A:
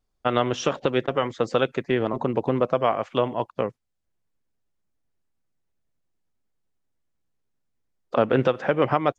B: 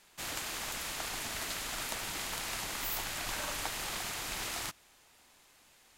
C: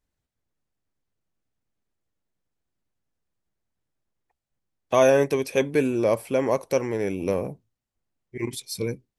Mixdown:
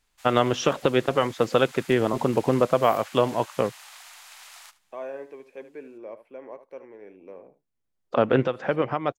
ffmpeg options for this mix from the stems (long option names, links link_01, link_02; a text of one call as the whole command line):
ffmpeg -i stem1.wav -i stem2.wav -i stem3.wav -filter_complex "[0:a]volume=1.5dB[link_01];[1:a]highpass=frequency=740:width=0.5412,highpass=frequency=740:width=1.3066,equalizer=frequency=14000:width=2.9:gain=-4,dynaudnorm=framelen=380:gausssize=7:maxgain=4dB,volume=-12dB,asplit=2[link_02][link_03];[link_03]volume=-16.5dB[link_04];[2:a]acrossover=split=250 2600:gain=0.0891 1 0.0708[link_05][link_06][link_07];[link_05][link_06][link_07]amix=inputs=3:normalize=0,volume=-17.5dB,asplit=3[link_08][link_09][link_10];[link_09]volume=-13dB[link_11];[link_10]apad=whole_len=404898[link_12];[link_01][link_12]sidechaincompress=threshold=-48dB:ratio=8:attack=5.9:release=1230[link_13];[link_04][link_11]amix=inputs=2:normalize=0,aecho=0:1:74:1[link_14];[link_13][link_02][link_08][link_14]amix=inputs=4:normalize=0" out.wav